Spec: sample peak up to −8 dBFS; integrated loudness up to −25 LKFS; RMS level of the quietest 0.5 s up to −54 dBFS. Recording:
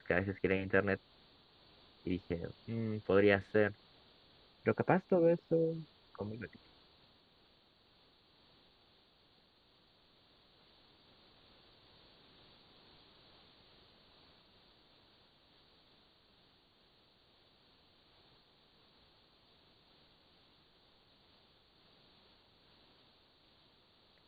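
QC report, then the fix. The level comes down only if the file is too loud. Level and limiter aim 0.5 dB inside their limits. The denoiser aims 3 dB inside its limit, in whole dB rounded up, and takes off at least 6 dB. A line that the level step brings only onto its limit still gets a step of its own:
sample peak −13.0 dBFS: in spec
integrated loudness −34.5 LKFS: in spec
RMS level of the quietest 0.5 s −69 dBFS: in spec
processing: no processing needed

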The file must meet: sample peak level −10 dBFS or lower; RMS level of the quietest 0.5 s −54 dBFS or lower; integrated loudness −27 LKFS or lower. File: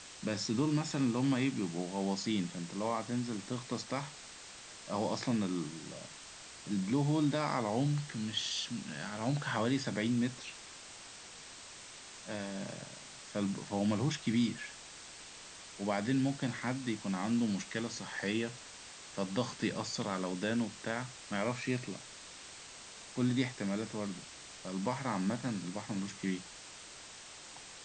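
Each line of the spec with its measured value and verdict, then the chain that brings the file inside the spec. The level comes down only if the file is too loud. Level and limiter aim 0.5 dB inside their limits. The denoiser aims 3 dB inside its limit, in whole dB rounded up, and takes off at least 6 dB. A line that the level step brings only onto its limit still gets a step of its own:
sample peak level −18.5 dBFS: in spec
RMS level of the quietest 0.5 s −51 dBFS: out of spec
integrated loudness −35.5 LKFS: in spec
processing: broadband denoise 6 dB, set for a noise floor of −51 dBFS

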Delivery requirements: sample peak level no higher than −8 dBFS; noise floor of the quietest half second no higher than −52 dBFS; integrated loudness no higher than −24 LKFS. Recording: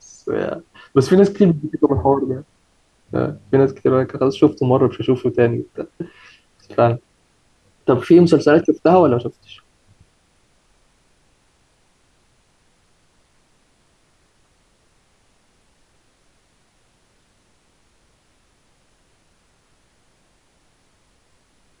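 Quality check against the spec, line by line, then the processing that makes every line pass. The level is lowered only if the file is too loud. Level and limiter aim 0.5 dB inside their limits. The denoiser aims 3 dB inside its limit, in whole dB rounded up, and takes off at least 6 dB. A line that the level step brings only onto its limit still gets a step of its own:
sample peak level −1.5 dBFS: out of spec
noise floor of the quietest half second −60 dBFS: in spec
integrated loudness −17.0 LKFS: out of spec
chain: level −7.5 dB

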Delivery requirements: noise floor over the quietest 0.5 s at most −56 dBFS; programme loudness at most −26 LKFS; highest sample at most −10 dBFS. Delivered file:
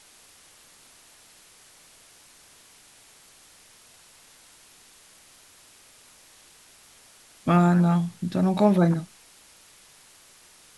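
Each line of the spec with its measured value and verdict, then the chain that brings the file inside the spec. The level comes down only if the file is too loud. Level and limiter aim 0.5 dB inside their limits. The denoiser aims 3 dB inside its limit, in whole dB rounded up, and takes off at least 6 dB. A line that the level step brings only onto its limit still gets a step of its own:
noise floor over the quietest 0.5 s −54 dBFS: out of spec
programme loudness −22.0 LKFS: out of spec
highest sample −6.5 dBFS: out of spec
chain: level −4.5 dB

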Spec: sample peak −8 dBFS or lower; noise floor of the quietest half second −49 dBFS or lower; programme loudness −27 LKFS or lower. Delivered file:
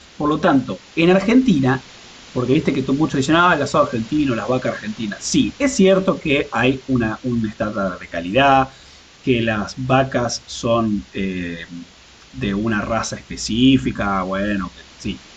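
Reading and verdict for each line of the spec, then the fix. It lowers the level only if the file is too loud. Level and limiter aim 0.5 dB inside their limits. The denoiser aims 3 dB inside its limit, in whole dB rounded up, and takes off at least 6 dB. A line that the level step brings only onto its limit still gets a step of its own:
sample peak −4.0 dBFS: out of spec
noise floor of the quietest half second −45 dBFS: out of spec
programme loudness −18.5 LKFS: out of spec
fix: level −9 dB

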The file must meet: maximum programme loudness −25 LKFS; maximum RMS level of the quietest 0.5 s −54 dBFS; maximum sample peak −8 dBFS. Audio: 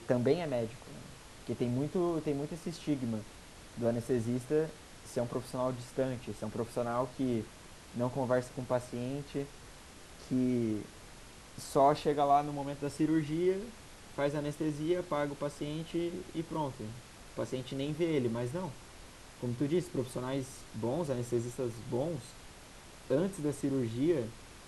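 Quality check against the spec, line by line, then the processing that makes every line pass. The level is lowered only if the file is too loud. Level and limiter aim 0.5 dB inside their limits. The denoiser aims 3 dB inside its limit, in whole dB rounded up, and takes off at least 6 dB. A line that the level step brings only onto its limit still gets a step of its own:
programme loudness −34.5 LKFS: in spec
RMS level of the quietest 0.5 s −52 dBFS: out of spec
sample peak −15.0 dBFS: in spec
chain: broadband denoise 6 dB, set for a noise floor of −52 dBFS

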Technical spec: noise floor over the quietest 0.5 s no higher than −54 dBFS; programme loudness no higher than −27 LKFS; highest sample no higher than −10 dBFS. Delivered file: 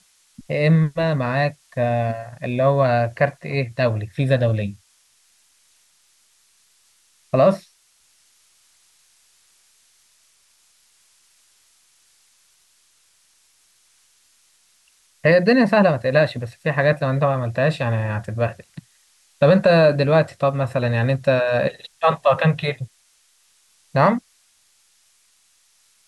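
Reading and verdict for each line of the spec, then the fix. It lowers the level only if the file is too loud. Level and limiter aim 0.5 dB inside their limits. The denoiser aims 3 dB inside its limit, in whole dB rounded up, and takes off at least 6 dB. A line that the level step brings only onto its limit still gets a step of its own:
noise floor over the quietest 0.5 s −60 dBFS: in spec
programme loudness −19.5 LKFS: out of spec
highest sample −5.0 dBFS: out of spec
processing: level −8 dB

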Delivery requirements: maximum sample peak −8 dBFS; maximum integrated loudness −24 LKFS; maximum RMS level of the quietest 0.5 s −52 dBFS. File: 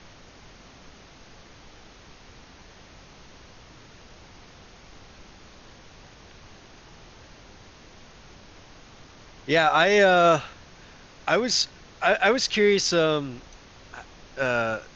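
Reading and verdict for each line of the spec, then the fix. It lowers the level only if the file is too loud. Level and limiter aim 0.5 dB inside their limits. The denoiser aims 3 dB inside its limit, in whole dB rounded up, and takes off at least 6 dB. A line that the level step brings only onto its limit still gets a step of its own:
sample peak −6.0 dBFS: out of spec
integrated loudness −21.5 LKFS: out of spec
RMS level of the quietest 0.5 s −49 dBFS: out of spec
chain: broadband denoise 6 dB, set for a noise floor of −49 dBFS
level −3 dB

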